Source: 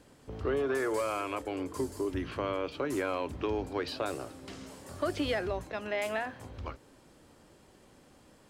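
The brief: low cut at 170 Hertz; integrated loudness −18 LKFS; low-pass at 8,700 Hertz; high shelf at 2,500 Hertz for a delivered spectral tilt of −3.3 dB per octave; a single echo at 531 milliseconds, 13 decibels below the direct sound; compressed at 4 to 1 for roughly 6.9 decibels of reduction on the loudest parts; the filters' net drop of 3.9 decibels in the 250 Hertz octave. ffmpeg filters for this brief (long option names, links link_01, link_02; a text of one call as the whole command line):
ffmpeg -i in.wav -af "highpass=170,lowpass=8700,equalizer=frequency=250:width_type=o:gain=-4.5,highshelf=frequency=2500:gain=-6,acompressor=threshold=-37dB:ratio=4,aecho=1:1:531:0.224,volume=23.5dB" out.wav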